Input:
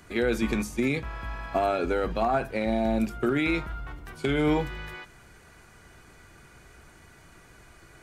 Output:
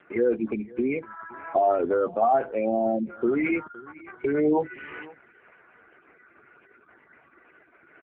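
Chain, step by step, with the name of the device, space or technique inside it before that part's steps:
gate on every frequency bin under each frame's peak −15 dB strong
satellite phone (band-pass filter 330–3,200 Hz; single-tap delay 514 ms −21.5 dB; level +6 dB; AMR narrowband 5.15 kbit/s 8,000 Hz)

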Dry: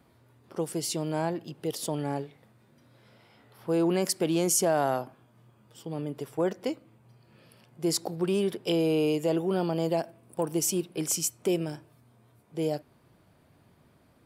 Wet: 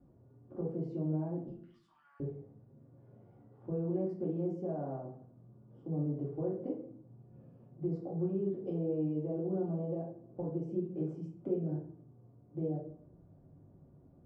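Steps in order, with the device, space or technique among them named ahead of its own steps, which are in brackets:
0:01.48–0:02.20: Butterworth high-pass 1,200 Hz 48 dB per octave
television next door (downward compressor 6 to 1, threshold −32 dBFS, peak gain reduction 11.5 dB; low-pass filter 450 Hz 12 dB per octave; convolution reverb RT60 0.55 s, pre-delay 3 ms, DRR −5 dB)
level −4.5 dB

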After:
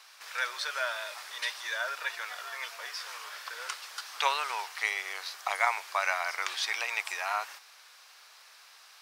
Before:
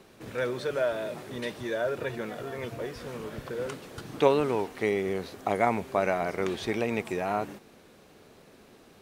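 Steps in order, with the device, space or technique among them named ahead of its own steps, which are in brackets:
headphones lying on a table (high-pass filter 1,000 Hz 24 dB per octave; parametric band 5,100 Hz +7.5 dB 0.57 octaves)
level +5 dB

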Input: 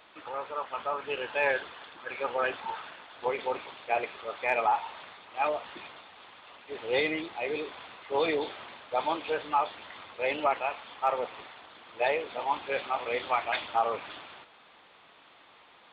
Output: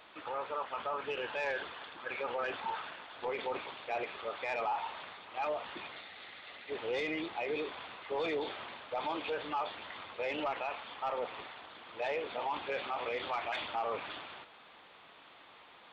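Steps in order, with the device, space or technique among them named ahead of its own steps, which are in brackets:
0:05.92–0:06.70: thirty-one-band graphic EQ 1,000 Hz −8 dB, 2,000 Hz +8 dB, 4,000 Hz +7 dB
soft clipper into limiter (soft clipping −20 dBFS, distortion −17 dB; brickwall limiter −28 dBFS, peak gain reduction 7.5 dB)

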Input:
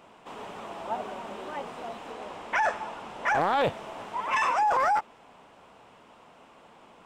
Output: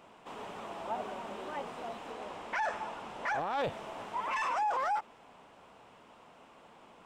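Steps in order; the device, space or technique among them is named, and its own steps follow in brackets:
soft clipper into limiter (soft clipping −17.5 dBFS, distortion −19 dB; brickwall limiter −23 dBFS, peak gain reduction 5 dB)
level −3 dB

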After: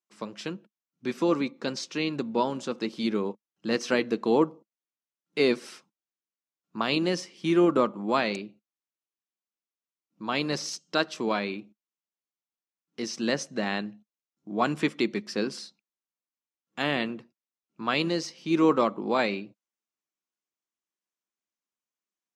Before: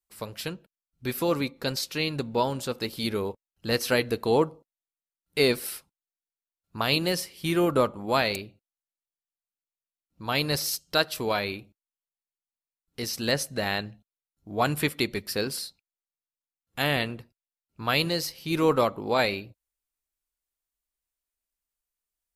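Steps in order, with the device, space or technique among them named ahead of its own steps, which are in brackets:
television speaker (loudspeaker in its box 160–6,900 Hz, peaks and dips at 210 Hz +8 dB, 330 Hz +7 dB, 1,100 Hz +4 dB, 4,300 Hz −5 dB, 6,200 Hz +3 dB)
level −2.5 dB

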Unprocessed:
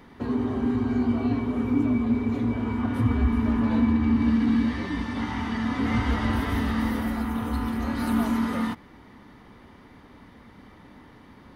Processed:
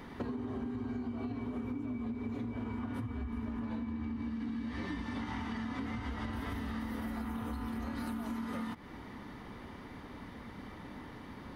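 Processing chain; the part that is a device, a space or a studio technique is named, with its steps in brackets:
serial compression, leveller first (downward compressor, threshold −26 dBFS, peak gain reduction 9.5 dB; downward compressor 10 to 1, threshold −37 dBFS, peak gain reduction 13 dB)
level +2 dB

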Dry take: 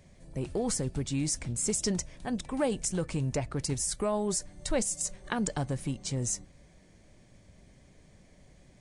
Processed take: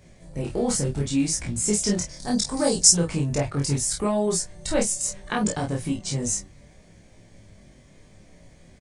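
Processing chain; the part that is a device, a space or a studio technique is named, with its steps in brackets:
0:02.09–0:02.92: high shelf with overshoot 3,700 Hz +9.5 dB, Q 3
double-tracked vocal (double-tracking delay 29 ms −2.5 dB; chorus effect 0.7 Hz, delay 17.5 ms, depth 3.6 ms)
level +7.5 dB

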